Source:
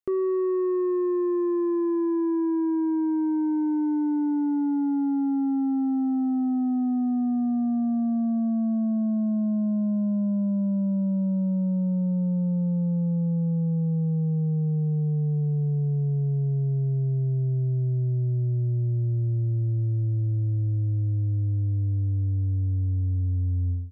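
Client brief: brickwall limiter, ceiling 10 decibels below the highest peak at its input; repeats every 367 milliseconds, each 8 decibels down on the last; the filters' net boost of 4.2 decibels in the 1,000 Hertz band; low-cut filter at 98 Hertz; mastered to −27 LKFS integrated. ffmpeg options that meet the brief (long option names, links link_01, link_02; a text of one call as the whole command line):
ffmpeg -i in.wav -af "highpass=98,equalizer=frequency=1000:width_type=o:gain=5,alimiter=level_in=5dB:limit=-24dB:level=0:latency=1,volume=-5dB,aecho=1:1:367|734|1101|1468|1835:0.398|0.159|0.0637|0.0255|0.0102,volume=6.5dB" out.wav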